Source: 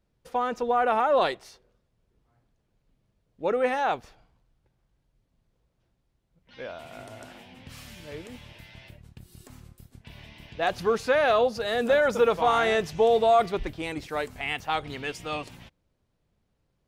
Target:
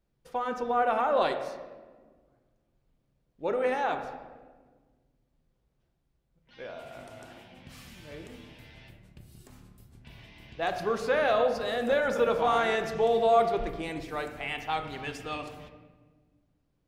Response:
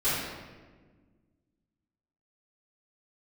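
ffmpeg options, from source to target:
-filter_complex "[0:a]asplit=2[link_01][link_02];[1:a]atrim=start_sample=2205,highshelf=frequency=5500:gain=-12[link_03];[link_02][link_03]afir=irnorm=-1:irlink=0,volume=-16dB[link_04];[link_01][link_04]amix=inputs=2:normalize=0,volume=-5dB"

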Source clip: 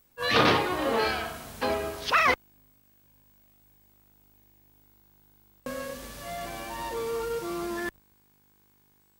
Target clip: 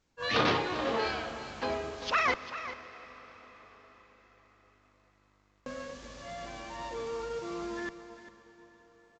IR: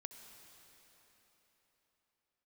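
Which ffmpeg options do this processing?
-filter_complex "[0:a]aecho=1:1:397:0.224,asplit=2[link_01][link_02];[1:a]atrim=start_sample=2205,asetrate=29547,aresample=44100[link_03];[link_02][link_03]afir=irnorm=-1:irlink=0,volume=-2dB[link_04];[link_01][link_04]amix=inputs=2:normalize=0,aresample=16000,aresample=44100,volume=-9dB"

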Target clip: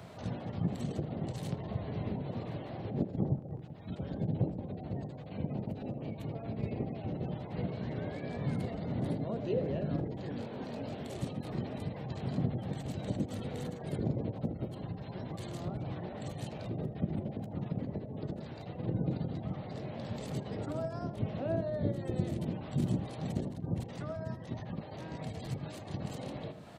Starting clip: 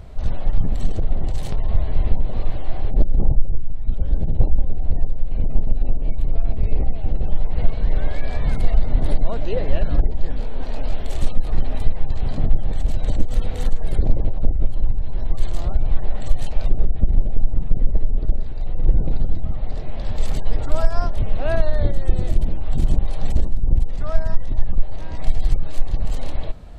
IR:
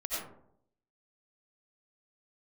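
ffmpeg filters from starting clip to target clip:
-filter_complex "[0:a]highpass=frequency=130:width=0.5412,highpass=frequency=130:width=1.3066,acrossover=split=190|520[link_01][link_02][link_03];[link_02]flanger=delay=16.5:depth=5.5:speed=0.13[link_04];[link_03]acompressor=threshold=-48dB:ratio=6[link_05];[link_01][link_04][link_05]amix=inputs=3:normalize=0,asplit=2[link_06][link_07];[link_07]adelay=80,highpass=300,lowpass=3400,asoftclip=type=hard:threshold=-27.5dB,volume=-11dB[link_08];[link_06][link_08]amix=inputs=2:normalize=0"

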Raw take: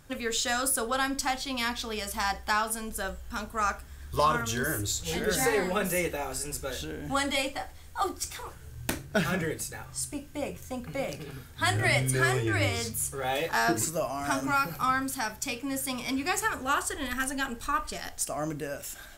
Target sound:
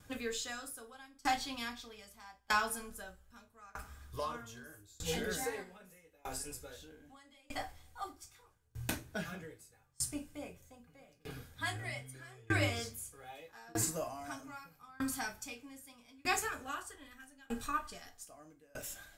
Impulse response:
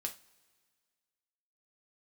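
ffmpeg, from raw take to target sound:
-filter_complex "[0:a]asplit=3[link_01][link_02][link_03];[link_01]afade=type=out:start_time=5.62:duration=0.02[link_04];[link_02]acompressor=threshold=-32dB:ratio=6,afade=type=in:start_time=5.62:duration=0.02,afade=type=out:start_time=7.47:duration=0.02[link_05];[link_03]afade=type=in:start_time=7.47:duration=0.02[link_06];[link_04][link_05][link_06]amix=inputs=3:normalize=0[link_07];[1:a]atrim=start_sample=2205,asetrate=57330,aresample=44100[link_08];[link_07][link_08]afir=irnorm=-1:irlink=0,aeval=exprs='val(0)*pow(10,-30*if(lt(mod(0.8*n/s,1),2*abs(0.8)/1000),1-mod(0.8*n/s,1)/(2*abs(0.8)/1000),(mod(0.8*n/s,1)-2*abs(0.8)/1000)/(1-2*abs(0.8)/1000))/20)':channel_layout=same,volume=1dB"

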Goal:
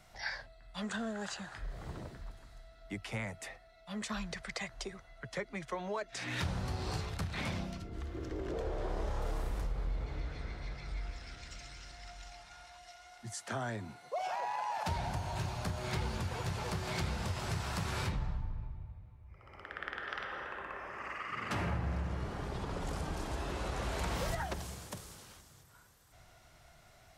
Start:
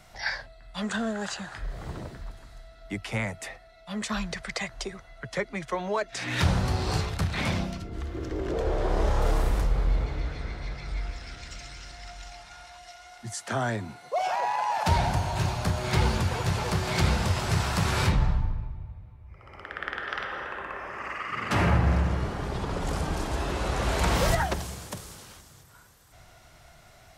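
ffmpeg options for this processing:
ffmpeg -i in.wav -af "acompressor=threshold=-27dB:ratio=2.5,volume=-7dB" out.wav

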